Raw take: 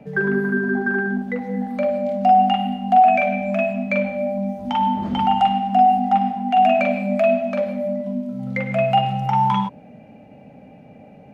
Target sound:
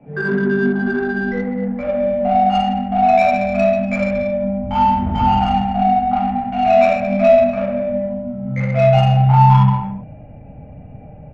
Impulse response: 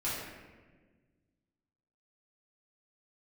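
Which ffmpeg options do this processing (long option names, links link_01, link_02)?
-filter_complex "[0:a]asubboost=boost=11:cutoff=76,aresample=8000,aresample=44100[link_01];[1:a]atrim=start_sample=2205,afade=type=out:start_time=0.41:duration=0.01,atrim=end_sample=18522[link_02];[link_01][link_02]afir=irnorm=-1:irlink=0,adynamicsmooth=sensitivity=0.5:basefreq=2000,volume=-1dB"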